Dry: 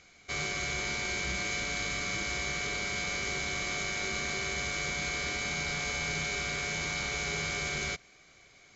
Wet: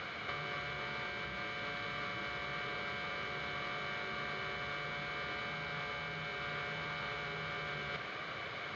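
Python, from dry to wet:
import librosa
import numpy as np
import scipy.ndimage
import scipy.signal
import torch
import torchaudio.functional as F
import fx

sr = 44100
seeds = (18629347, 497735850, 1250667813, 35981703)

y = fx.over_compress(x, sr, threshold_db=-45.0, ratio=-1.0)
y = fx.cabinet(y, sr, low_hz=140.0, low_slope=12, high_hz=3100.0, hz=(180.0, 260.0, 370.0, 750.0, 1200.0, 2300.0), db=(-5, -9, -7, -5, 3, -9))
y = y * 10.0 ** (10.5 / 20.0)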